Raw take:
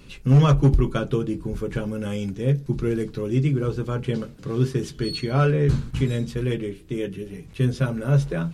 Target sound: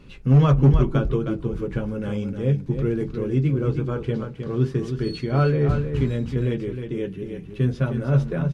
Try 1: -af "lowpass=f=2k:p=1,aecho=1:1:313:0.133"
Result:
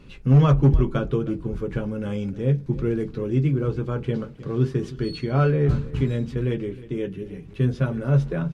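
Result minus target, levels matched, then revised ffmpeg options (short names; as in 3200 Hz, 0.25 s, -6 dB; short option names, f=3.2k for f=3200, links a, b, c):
echo-to-direct -10 dB
-af "lowpass=f=2k:p=1,aecho=1:1:313:0.422"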